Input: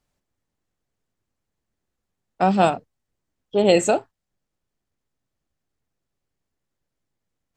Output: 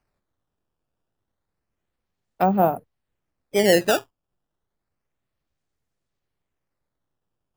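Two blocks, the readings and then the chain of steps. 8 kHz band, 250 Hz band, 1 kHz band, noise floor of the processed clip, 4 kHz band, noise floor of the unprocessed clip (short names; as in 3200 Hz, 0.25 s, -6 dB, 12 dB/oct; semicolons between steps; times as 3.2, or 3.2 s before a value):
-0.5 dB, -1.5 dB, -1.5 dB, -82 dBFS, +2.0 dB, -82 dBFS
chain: treble ducked by the level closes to 1000 Hz, closed at -14 dBFS; bell 250 Hz -2.5 dB; decimation with a swept rate 12×, swing 160% 0.3 Hz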